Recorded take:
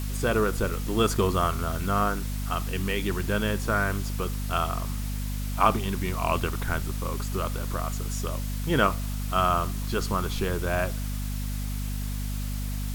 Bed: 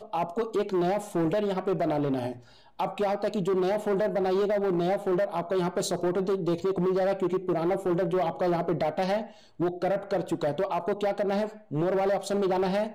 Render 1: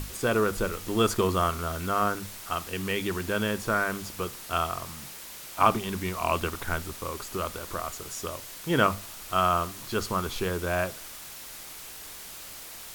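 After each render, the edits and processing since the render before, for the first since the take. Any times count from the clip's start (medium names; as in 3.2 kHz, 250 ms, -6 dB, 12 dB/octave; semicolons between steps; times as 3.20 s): hum notches 50/100/150/200/250 Hz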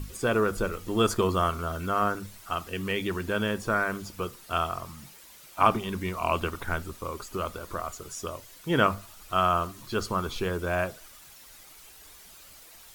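noise reduction 10 dB, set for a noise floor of -43 dBFS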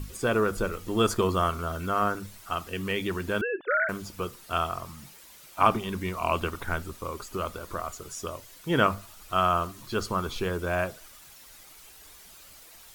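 3.41–3.89 s: formants replaced by sine waves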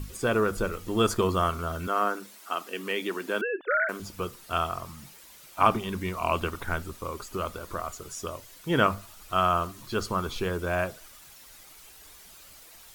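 1.87–4.00 s: high-pass 240 Hz 24 dB/octave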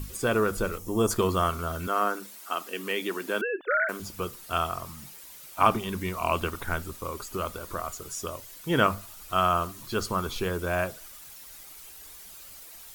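treble shelf 8.1 kHz +7 dB; 0.78–1.11 s: time-frequency box 1.2–5.1 kHz -10 dB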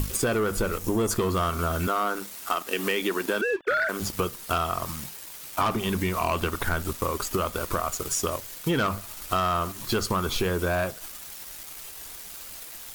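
waveshaping leveller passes 3; compression, threshold -23 dBFS, peak gain reduction 12 dB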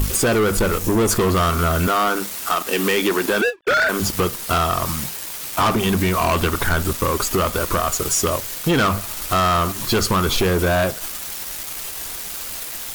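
waveshaping leveller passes 3; endings held to a fixed fall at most 400 dB/s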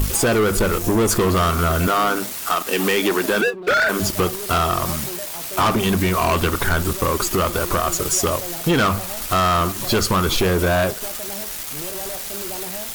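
add bed -8.5 dB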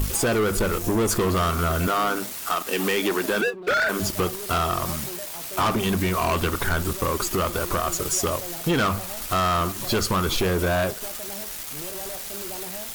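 trim -4.5 dB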